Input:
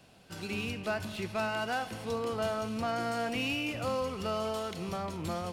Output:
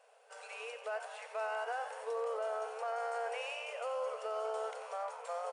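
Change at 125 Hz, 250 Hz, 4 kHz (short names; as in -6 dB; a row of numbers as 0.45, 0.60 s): under -40 dB, under -40 dB, -11.0 dB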